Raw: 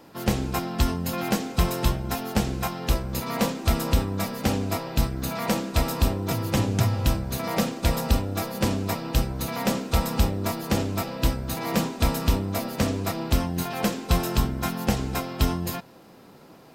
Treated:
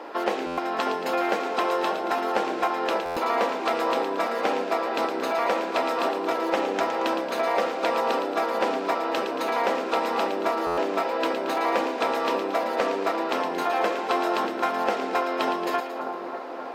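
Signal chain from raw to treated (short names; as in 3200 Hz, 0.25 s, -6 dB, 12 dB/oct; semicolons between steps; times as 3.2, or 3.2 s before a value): HPF 320 Hz 24 dB/oct; high shelf 5200 Hz -10.5 dB; compressor 2.5:1, threshold -40 dBFS, peak gain reduction 11.5 dB; split-band echo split 1600 Hz, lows 0.592 s, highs 0.113 s, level -8 dB; overdrive pedal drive 22 dB, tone 1200 Hz, clips at -3 dBFS; stuck buffer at 0.46/3.05/10.66, samples 512, times 9; gain +3 dB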